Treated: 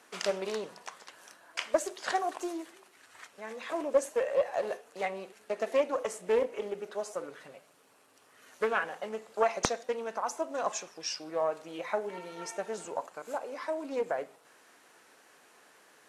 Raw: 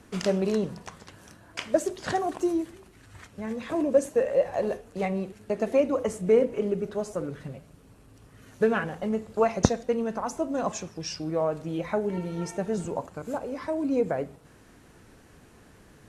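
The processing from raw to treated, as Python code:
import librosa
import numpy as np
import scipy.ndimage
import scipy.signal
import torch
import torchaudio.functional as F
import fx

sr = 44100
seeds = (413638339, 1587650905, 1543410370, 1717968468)

y = scipy.signal.sosfilt(scipy.signal.butter(2, 630.0, 'highpass', fs=sr, output='sos'), x)
y = fx.doppler_dist(y, sr, depth_ms=0.43)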